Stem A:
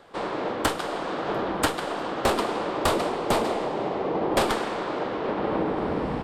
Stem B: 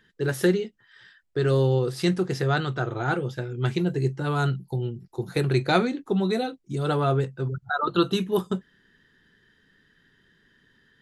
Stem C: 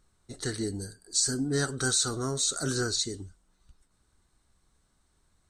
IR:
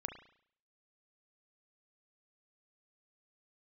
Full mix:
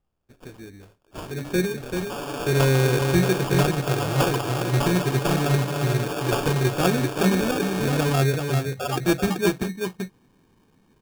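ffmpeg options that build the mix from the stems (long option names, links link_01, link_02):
-filter_complex "[0:a]aecho=1:1:7:0.84,adelay=1950,volume=-5dB[link_01];[1:a]equalizer=frequency=1300:width=0.46:gain=-5.5,dynaudnorm=framelen=200:gausssize=5:maxgain=9dB,adelay=1100,volume=-5.5dB,asplit=2[link_02][link_03];[link_03]volume=-5dB[link_04];[2:a]volume=-9.5dB[link_05];[link_04]aecho=0:1:385:1[link_06];[link_01][link_02][link_05][link_06]amix=inputs=4:normalize=0,acrusher=samples=22:mix=1:aa=0.000001"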